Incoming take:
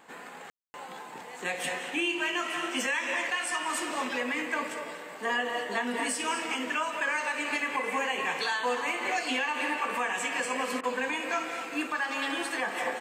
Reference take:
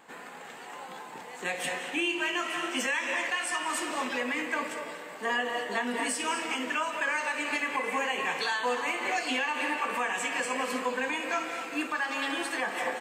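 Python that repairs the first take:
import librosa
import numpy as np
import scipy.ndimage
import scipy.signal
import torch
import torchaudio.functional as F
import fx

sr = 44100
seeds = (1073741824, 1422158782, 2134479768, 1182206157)

y = fx.fix_ambience(x, sr, seeds[0], print_start_s=4.73, print_end_s=5.23, start_s=0.5, end_s=0.74)
y = fx.fix_interpolate(y, sr, at_s=(10.81,), length_ms=23.0)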